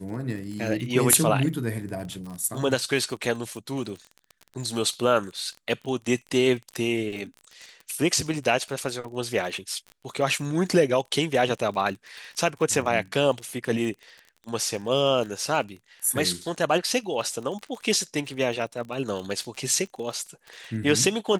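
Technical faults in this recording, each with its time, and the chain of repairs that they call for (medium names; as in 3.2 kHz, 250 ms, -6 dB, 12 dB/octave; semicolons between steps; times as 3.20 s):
crackle 33 per s -33 dBFS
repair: de-click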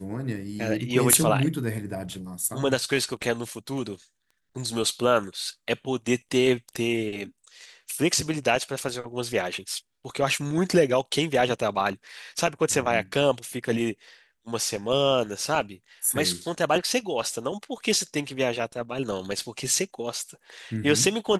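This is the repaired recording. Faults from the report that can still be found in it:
nothing left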